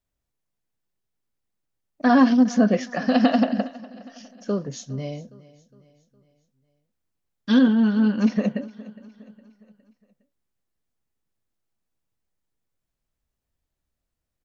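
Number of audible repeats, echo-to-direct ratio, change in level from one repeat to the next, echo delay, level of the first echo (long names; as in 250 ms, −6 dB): 3, −19.0 dB, −6.5 dB, 411 ms, −20.0 dB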